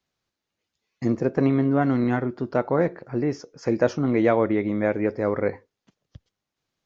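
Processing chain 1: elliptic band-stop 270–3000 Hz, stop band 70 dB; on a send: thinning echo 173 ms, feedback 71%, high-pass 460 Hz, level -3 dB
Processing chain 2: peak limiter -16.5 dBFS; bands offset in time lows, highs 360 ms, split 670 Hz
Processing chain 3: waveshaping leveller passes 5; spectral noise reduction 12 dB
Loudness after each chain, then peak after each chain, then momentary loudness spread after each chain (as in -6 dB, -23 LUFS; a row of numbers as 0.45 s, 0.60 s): -27.0 LUFS, -28.5 LUFS, -12.5 LUFS; -13.5 dBFS, -15.5 dBFS, -6.0 dBFS; 11 LU, 8 LU, 6 LU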